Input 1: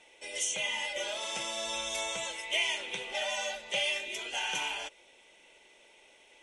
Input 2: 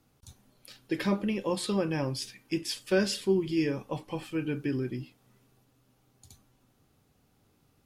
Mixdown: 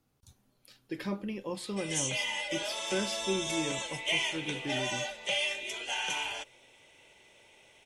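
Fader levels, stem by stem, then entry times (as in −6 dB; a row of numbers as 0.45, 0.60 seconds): 0.0, −7.0 decibels; 1.55, 0.00 seconds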